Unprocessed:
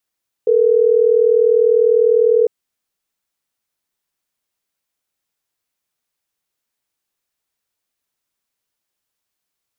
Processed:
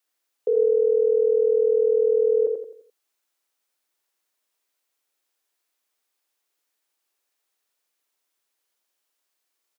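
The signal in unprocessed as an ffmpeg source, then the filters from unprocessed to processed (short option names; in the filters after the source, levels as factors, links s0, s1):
-f lavfi -i "aevalsrc='0.237*(sin(2*PI*440*t)+sin(2*PI*480*t))*clip(min(mod(t,6),2-mod(t,6))/0.005,0,1)':d=3.12:s=44100"
-filter_complex "[0:a]highpass=f=290:w=0.5412,highpass=f=290:w=1.3066,alimiter=limit=0.168:level=0:latency=1:release=16,asplit=2[s0][s1];[s1]aecho=0:1:86|172|258|344|430:0.596|0.232|0.0906|0.0353|0.0138[s2];[s0][s2]amix=inputs=2:normalize=0"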